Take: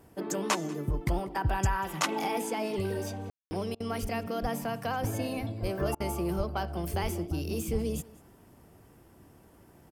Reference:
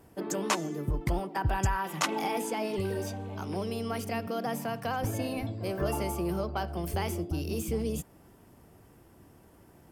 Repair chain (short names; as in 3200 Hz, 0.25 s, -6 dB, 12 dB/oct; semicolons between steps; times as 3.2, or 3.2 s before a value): de-plosive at 4.01/4.41/5.61/6.37/7.02/7.72; room tone fill 3.3–3.51; interpolate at 3.75/5.95, 51 ms; inverse comb 0.191 s -22 dB